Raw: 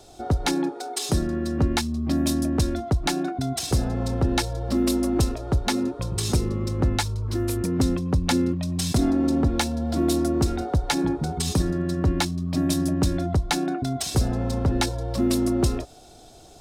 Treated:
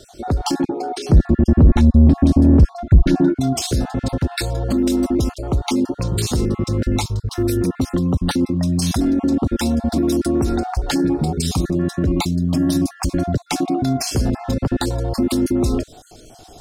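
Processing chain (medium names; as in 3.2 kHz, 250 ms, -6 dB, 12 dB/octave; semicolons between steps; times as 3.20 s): random holes in the spectrogram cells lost 31%; dynamic bell 250 Hz, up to +4 dB, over -35 dBFS, Q 1.1; peak limiter -17 dBFS, peak gain reduction 8.5 dB; 0.64–3.36 s: RIAA curve playback; saturation -11 dBFS, distortion -12 dB; trim +7 dB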